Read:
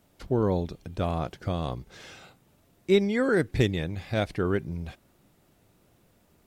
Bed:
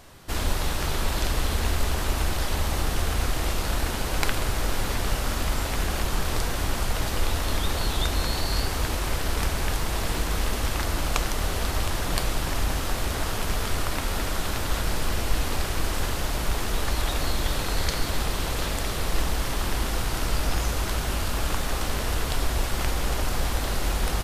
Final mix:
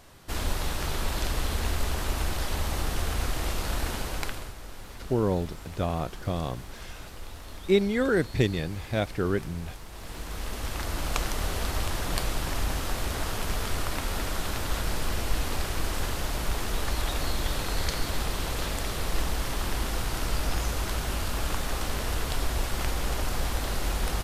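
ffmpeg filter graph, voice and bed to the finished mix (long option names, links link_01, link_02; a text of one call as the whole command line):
ffmpeg -i stem1.wav -i stem2.wav -filter_complex "[0:a]adelay=4800,volume=-0.5dB[link_01];[1:a]volume=10dB,afade=type=out:start_time=3.94:duration=0.61:silence=0.223872,afade=type=in:start_time=9.91:duration=1.33:silence=0.211349[link_02];[link_01][link_02]amix=inputs=2:normalize=0" out.wav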